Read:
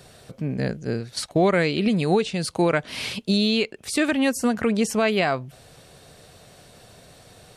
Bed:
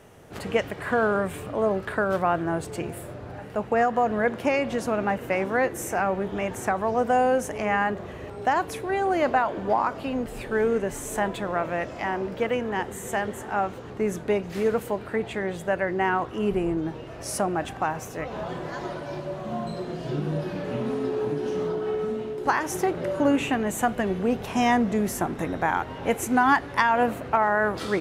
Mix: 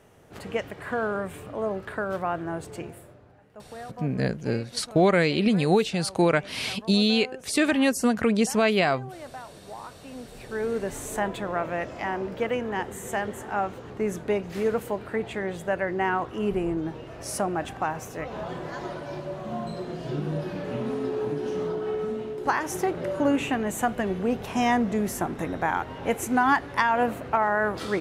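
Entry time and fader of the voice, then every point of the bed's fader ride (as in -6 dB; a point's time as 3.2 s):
3.60 s, -0.5 dB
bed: 2.81 s -5 dB
3.38 s -18.5 dB
9.71 s -18.5 dB
10.93 s -1.5 dB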